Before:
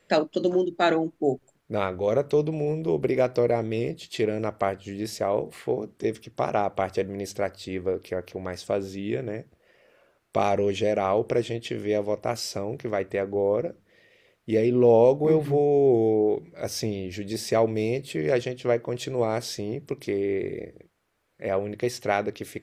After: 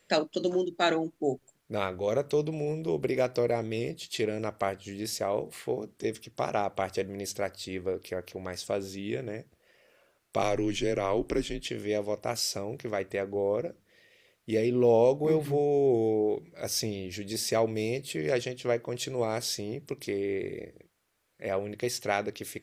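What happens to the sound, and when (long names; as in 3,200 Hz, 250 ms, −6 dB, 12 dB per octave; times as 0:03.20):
0:10.42–0:11.67: frequency shifter −83 Hz
whole clip: high-shelf EQ 3,100 Hz +9.5 dB; level −5 dB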